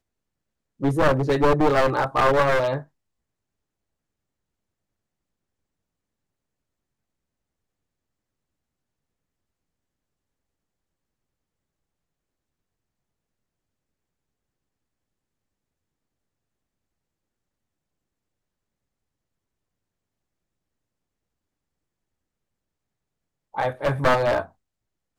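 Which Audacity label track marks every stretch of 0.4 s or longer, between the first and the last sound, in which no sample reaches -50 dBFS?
2.850000	23.540000	silence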